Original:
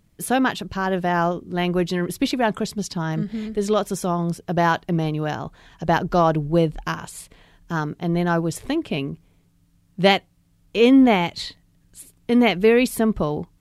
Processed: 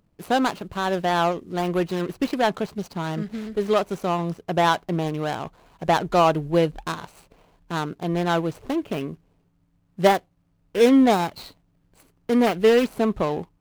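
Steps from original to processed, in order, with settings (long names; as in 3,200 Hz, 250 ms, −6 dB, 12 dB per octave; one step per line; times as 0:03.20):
running median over 25 samples
low-shelf EQ 340 Hz −10.5 dB
level +4 dB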